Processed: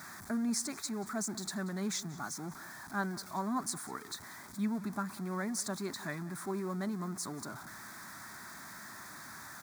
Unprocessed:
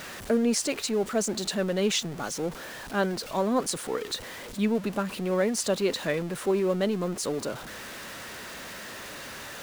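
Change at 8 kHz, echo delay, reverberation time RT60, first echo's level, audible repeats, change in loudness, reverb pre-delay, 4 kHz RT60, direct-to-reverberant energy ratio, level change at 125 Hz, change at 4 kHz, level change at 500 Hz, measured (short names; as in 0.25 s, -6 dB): -6.0 dB, 0.184 s, none, -20.0 dB, 1, -9.5 dB, none, none, none, -6.5 dB, -11.5 dB, -16.5 dB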